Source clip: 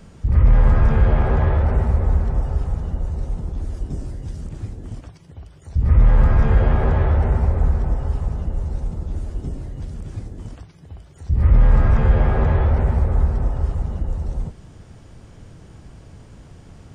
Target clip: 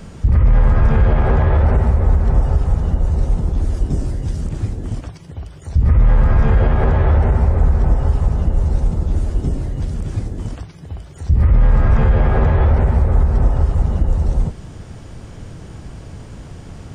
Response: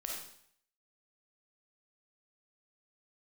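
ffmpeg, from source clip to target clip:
-af "alimiter=limit=-14dB:level=0:latency=1:release=197,volume=8.5dB"

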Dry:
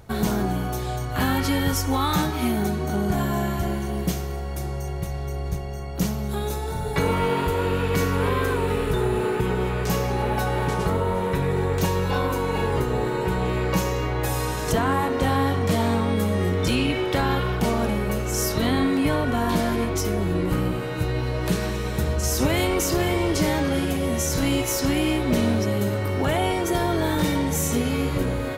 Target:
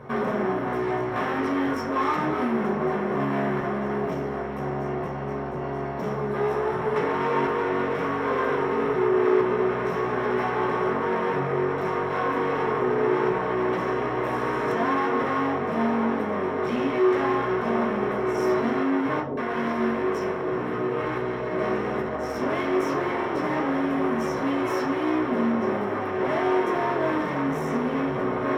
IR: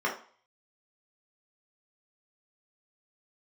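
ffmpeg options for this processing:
-filter_complex "[0:a]lowpass=frequency=1300:poles=1,acompressor=threshold=-25dB:ratio=6,volume=35dB,asoftclip=hard,volume=-35dB,asettb=1/sr,asplit=3[link_01][link_02][link_03];[link_01]atrim=end=19.204[link_04];[link_02]atrim=start=19.2:end=21.59,asetpts=PTS-STARTPTS,afade=type=in:duration=0.004:curve=qsin,afade=type=out:start_time=2.386:duration=0.004:curve=qsin,acrossover=split=220|770[link_05][link_06][link_07];[link_06]adelay=70[link_08];[link_07]adelay=170[link_09];[link_05][link_08][link_09]amix=inputs=3:normalize=0,atrim=end_sample=105399[link_10];[link_03]atrim=start=21.586[link_11];[link_04][link_10]acrossfade=duration=0.004:curve1=hsin:curve2=qsin[link_12];[link_12][link_11]acrossfade=duration=0.004:curve1=qsin:curve2=hsin[link_13];[1:a]atrim=start_sample=2205[link_14];[link_13][link_14]afir=irnorm=-1:irlink=0,volume=2.5dB"

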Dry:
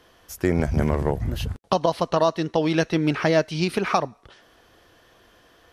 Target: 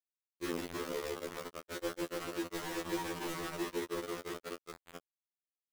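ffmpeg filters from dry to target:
ffmpeg -i in.wav -af "afftfilt=real='re*between(b*sr/4096,100,560)':imag='im*between(b*sr/4096,100,560)':win_size=4096:overlap=0.75,agate=range=-47dB:threshold=-51dB:ratio=16:detection=peak,aecho=1:1:150|315|496.5|696.2|915.8:0.631|0.398|0.251|0.158|0.1,areverse,acompressor=mode=upward:threshold=-22dB:ratio=2.5,areverse,lowshelf=frequency=230:width_type=q:width=3:gain=-13,acompressor=threshold=-40dB:ratio=2,aresample=8000,asoftclip=type=tanh:threshold=-35.5dB,aresample=44100,acrusher=bits=5:mix=0:aa=0.000001,afftfilt=real='re*2*eq(mod(b,4),0)':imag='im*2*eq(mod(b,4),0)':win_size=2048:overlap=0.75,volume=1dB" out.wav

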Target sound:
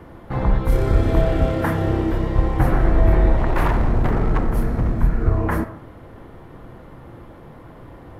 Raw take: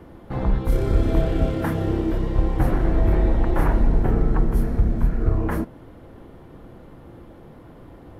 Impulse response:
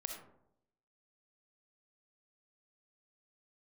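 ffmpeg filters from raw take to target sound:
-filter_complex "[0:a]asettb=1/sr,asplit=3[link_01][link_02][link_03];[link_01]atrim=end=3.354[link_04];[link_02]atrim=start=3.35:end=4.92,asetpts=PTS-STARTPTS,afade=type=in:duration=0.004:curve=qsin,afade=type=out:start_time=1.566:duration=0.004:curve=qsin,aeval=exprs='0.178*(abs(mod(val(0)/0.178+3,4)-2)-1)':channel_layout=same[link_05];[link_03]atrim=start=4.916[link_06];[link_04][link_05]acrossfade=duration=0.004:curve1=hsin:curve2=qsin[link_07];[link_07][link_06]acrossfade=duration=0.004:curve1=qsin:curve2=hsin,asplit=2[link_08][link_09];[link_09]equalizer=frequency=125:width_type=o:width=1:gain=9,equalizer=frequency=250:width_type=o:width=1:gain=-10,equalizer=frequency=500:width_type=o:width=1:gain=3,equalizer=frequency=1000:width_type=o:width=1:gain=9,equalizer=frequency=2000:width_type=o:width=1:gain=9[link_10];[1:a]atrim=start_sample=2205[link_11];[link_10][link_11]afir=irnorm=-1:irlink=0,volume=-7.5dB[link_12];[link_08][link_12]amix=inputs=2:normalize=0"

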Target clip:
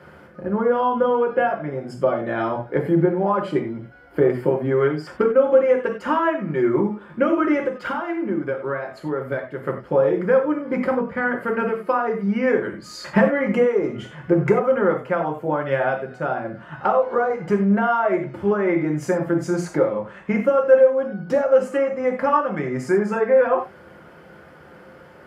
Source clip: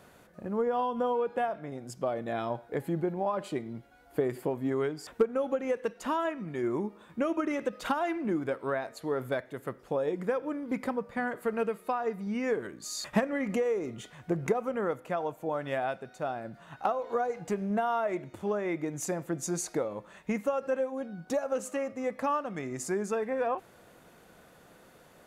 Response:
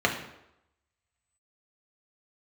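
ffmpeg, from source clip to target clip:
-filter_complex "[0:a]asettb=1/sr,asplit=3[link_01][link_02][link_03];[link_01]atrim=end=7.644[link_04];[link_02]atrim=start=7.64:end=9.65,asetpts=PTS-STARTPTS,afade=type=in:duration=0.004:curve=qsin,afade=type=out:start_time=2.006:duration=0.004:curve=qsin,acompressor=threshold=-38dB:ratio=2[link_05];[link_03]atrim=start=9.646[link_06];[link_04][link_05]acrossfade=duration=0.004:curve1=hsin:curve2=qsin[link_07];[link_07][link_06]acrossfade=duration=0.004:curve1=qsin:curve2=hsin[link_08];[1:a]atrim=start_sample=2205,atrim=end_sample=3528,asetrate=32634,aresample=44100[link_09];[link_08][link_09]afir=irnorm=-1:irlink=0,volume=-5dB"

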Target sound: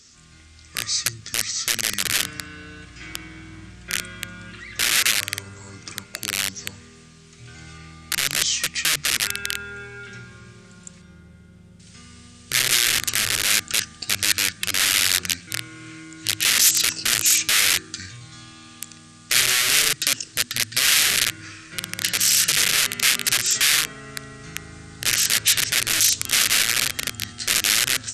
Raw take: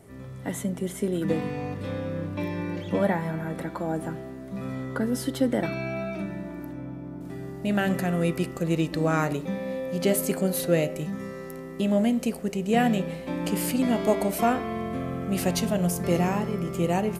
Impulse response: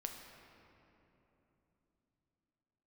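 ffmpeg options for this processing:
-af "aeval=exprs='(mod(11.2*val(0)+1,2)-1)/11.2':channel_layout=same,aexciter=amount=12:drive=4:freq=2300,asetrate=26945,aresample=44100,volume=-10.5dB"

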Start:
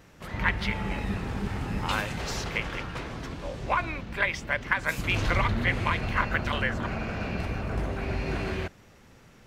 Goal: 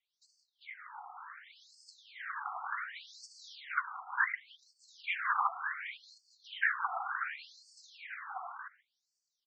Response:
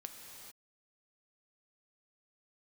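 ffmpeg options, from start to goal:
-filter_complex "[0:a]acrossover=split=2100[link_01][link_02];[link_01]highpass=frequency=290:poles=1[link_03];[link_02]acompressor=threshold=-52dB:ratio=6[link_04];[link_03][link_04]amix=inputs=2:normalize=0,asplit=2[link_05][link_06];[link_06]adelay=370,highpass=300,lowpass=3400,asoftclip=type=hard:threshold=-21.5dB,volume=-25dB[link_07];[link_05][link_07]amix=inputs=2:normalize=0,aexciter=amount=4.2:drive=5.9:freq=9700,equalizer=frequency=2600:width=6.5:gain=-13,afftfilt=real='hypot(re,im)*cos(2*PI*random(0))':imag='hypot(re,im)*sin(2*PI*random(1))':win_size=512:overlap=0.75,agate=range=-13dB:threshold=-57dB:ratio=16:detection=peak,alimiter=level_in=4.5dB:limit=-24dB:level=0:latency=1:release=316,volume=-4.5dB,dynaudnorm=framelen=470:gausssize=9:maxgain=13.5dB,adynamicequalizer=threshold=0.00501:dfrequency=910:dqfactor=4:tfrequency=910:tqfactor=4:attack=5:release=100:ratio=0.375:range=2.5:mode=cutabove:tftype=bell,afftfilt=real='re*between(b*sr/1024,970*pow(6200/970,0.5+0.5*sin(2*PI*0.68*pts/sr))/1.41,970*pow(6200/970,0.5+0.5*sin(2*PI*0.68*pts/sr))*1.41)':imag='im*between(b*sr/1024,970*pow(6200/970,0.5+0.5*sin(2*PI*0.68*pts/sr))/1.41,970*pow(6200/970,0.5+0.5*sin(2*PI*0.68*pts/sr))*1.41)':win_size=1024:overlap=0.75"

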